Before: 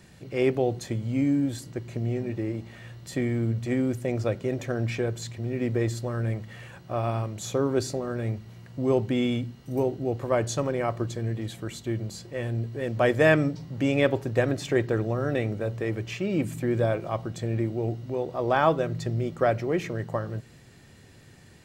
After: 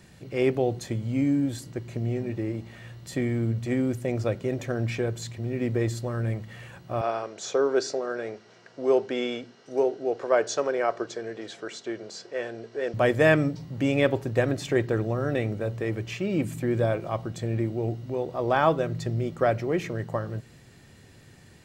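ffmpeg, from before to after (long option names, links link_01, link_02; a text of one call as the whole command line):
ffmpeg -i in.wav -filter_complex "[0:a]asettb=1/sr,asplit=3[link_01][link_02][link_03];[link_01]atrim=end=7.014[link_04];[link_02]atrim=start=7.01:end=12.94,asetpts=PTS-STARTPTS,afade=type=in:duration=0.004:curve=qsin,afade=type=out:start_time=5.926:duration=0.004:curve=qsin,highpass=390,equalizer=frequency=430:width_type=q:width=4:gain=8,equalizer=frequency=670:width_type=q:width=4:gain=4,equalizer=frequency=1500:width_type=q:width=4:gain=7,equalizer=frequency=5400:width_type=q:width=4:gain=6,lowpass=frequency=7200:width=0.5412,lowpass=frequency=7200:width=1.3066[link_05];[link_03]atrim=start=12.936[link_06];[link_04][link_05]acrossfade=duration=0.004:curve1=hsin:curve2=qsin[link_07];[link_07][link_06]acrossfade=duration=0.004:curve1=qsin:curve2=hsin" out.wav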